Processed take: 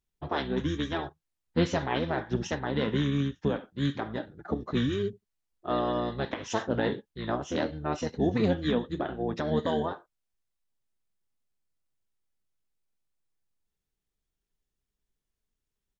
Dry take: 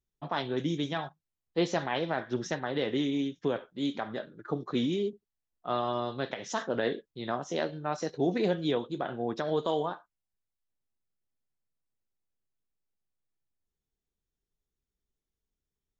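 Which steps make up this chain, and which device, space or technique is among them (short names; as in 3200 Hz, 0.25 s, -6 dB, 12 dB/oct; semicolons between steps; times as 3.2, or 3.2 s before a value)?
octave pedal (harmoniser -12 st -2 dB)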